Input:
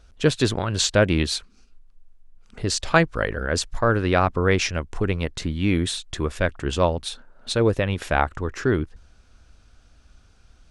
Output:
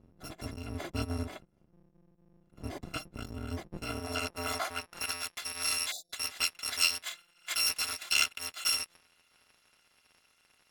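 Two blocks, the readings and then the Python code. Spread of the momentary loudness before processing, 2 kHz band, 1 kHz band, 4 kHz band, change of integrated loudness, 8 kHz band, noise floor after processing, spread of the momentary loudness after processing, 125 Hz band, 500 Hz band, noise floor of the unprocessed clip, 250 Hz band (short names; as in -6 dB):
8 LU, -9.5 dB, -14.5 dB, -3.5 dB, -9.5 dB, -4.0 dB, -70 dBFS, 15 LU, -18.5 dB, -22.0 dB, -55 dBFS, -18.5 dB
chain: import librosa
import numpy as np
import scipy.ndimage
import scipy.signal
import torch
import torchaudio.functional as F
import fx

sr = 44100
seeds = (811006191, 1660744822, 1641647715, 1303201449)

y = fx.bit_reversed(x, sr, seeds[0], block=256)
y = fx.spec_erase(y, sr, start_s=5.92, length_s=0.21, low_hz=800.0, high_hz=3500.0)
y = fx.filter_sweep_bandpass(y, sr, from_hz=240.0, to_hz=2400.0, start_s=3.64, end_s=5.29, q=0.77)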